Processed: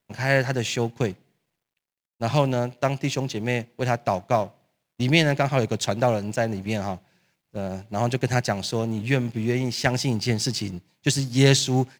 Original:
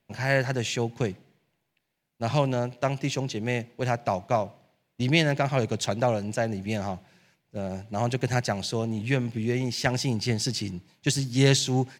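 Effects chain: companding laws mixed up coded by A; trim +3.5 dB

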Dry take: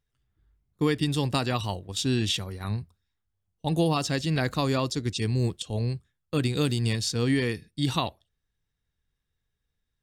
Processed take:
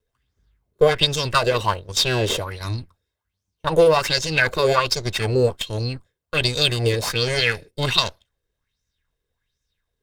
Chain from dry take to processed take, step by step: comb filter that takes the minimum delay 1.9 ms; dynamic bell 2.5 kHz, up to +3 dB, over -40 dBFS, Q 0.89; sweeping bell 1.3 Hz 410–6300 Hz +15 dB; trim +3 dB

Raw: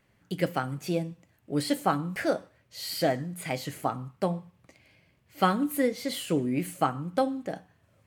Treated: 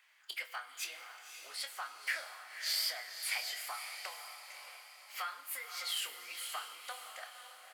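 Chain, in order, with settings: compression 12:1, threshold -35 dBFS, peak gain reduction 18 dB; formant-preserving pitch shift -1.5 st; echo that smears into a reverb 581 ms, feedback 47%, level -8 dB; speed mistake 24 fps film run at 25 fps; Bessel high-pass 1.6 kHz, order 4; treble shelf 5.8 kHz -6 dB; doubling 26 ms -9.5 dB; Schroeder reverb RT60 3.1 s, DRR 14 dB; trim +8 dB

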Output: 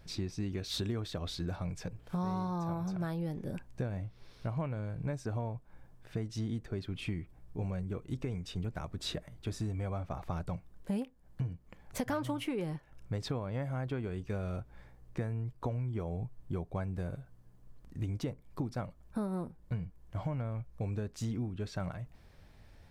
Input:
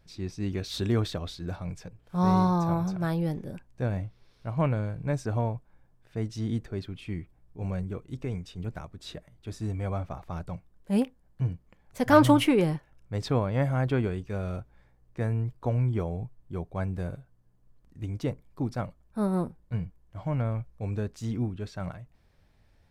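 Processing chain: compression 8:1, threshold -39 dBFS, peak gain reduction 25 dB; trim +6 dB

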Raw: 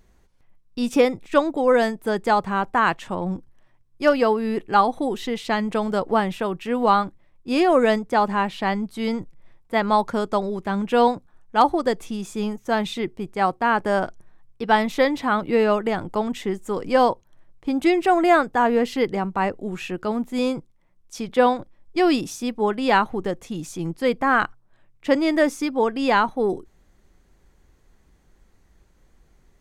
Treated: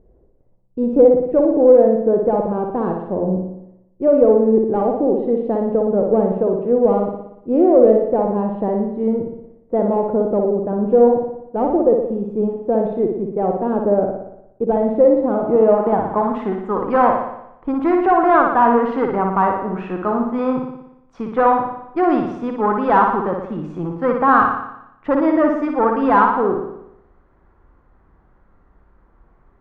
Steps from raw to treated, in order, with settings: valve stage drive 16 dB, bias 0.35; flutter echo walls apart 10.1 m, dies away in 0.81 s; low-pass sweep 510 Hz -> 1.2 kHz, 15.27–16.38 s; trim +3.5 dB

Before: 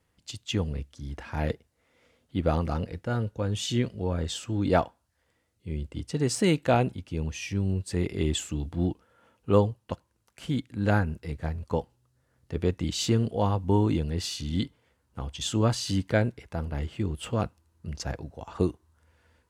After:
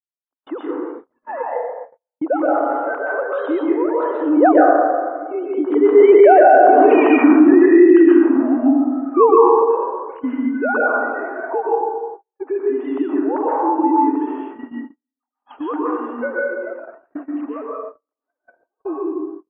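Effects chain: formants replaced by sine waves; Doppler pass-by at 6.93 s, 22 m/s, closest 9.5 m; steep high-pass 270 Hz 96 dB/octave; plate-style reverb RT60 1.4 s, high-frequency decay 0.4×, pre-delay 110 ms, DRR -5.5 dB; in parallel at +1 dB: compression, threshold -44 dBFS, peak gain reduction 24 dB; on the sum: gate -50 dBFS, range -46 dB; low-pass 1.3 kHz 24 dB/octave; peaking EQ 430 Hz -8.5 dB 1.9 oct; loudness maximiser +27.5 dB; trim -1 dB

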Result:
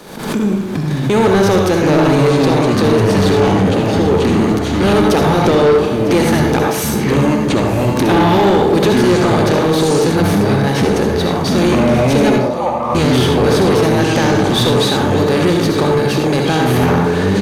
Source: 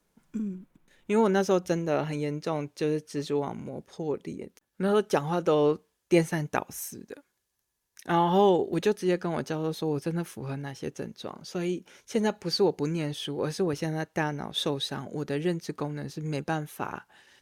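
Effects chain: spectral levelling over time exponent 0.6; in parallel at -1.5 dB: peak limiter -16 dBFS, peak gain reduction 10 dB; on the sum: speakerphone echo 340 ms, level -13 dB; ever faster or slower copies 274 ms, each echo -6 st, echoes 2; 12.38–12.95 s: brick-wall FIR band-pass 490–1300 Hz; delay 953 ms -16 dB; on a send at -2 dB: reverberation RT60 0.45 s, pre-delay 58 ms; on the sum: saturation -13 dBFS, distortion -13 dB; swell ahead of each attack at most 70 dB/s; trim +6.5 dB

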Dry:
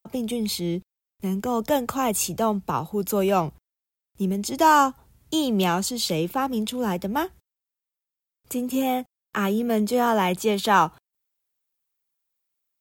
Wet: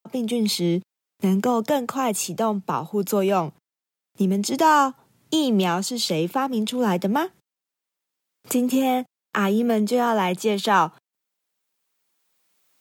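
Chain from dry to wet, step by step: recorder AGC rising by 11 dB/s; high-pass 140 Hz 24 dB/octave; treble shelf 11 kHz -9 dB

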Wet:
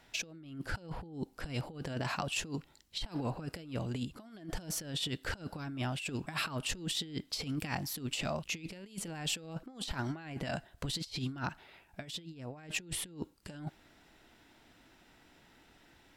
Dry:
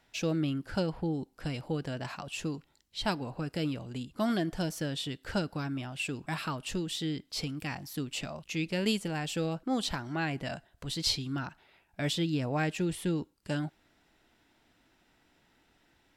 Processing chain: compressor with a negative ratio -38 dBFS, ratio -0.5

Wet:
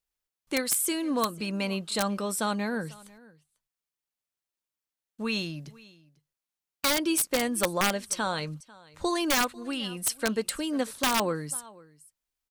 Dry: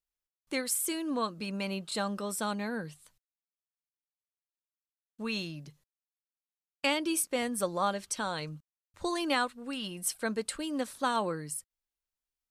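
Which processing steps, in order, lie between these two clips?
delay 495 ms -22.5 dB; integer overflow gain 20.5 dB; trim +4.5 dB

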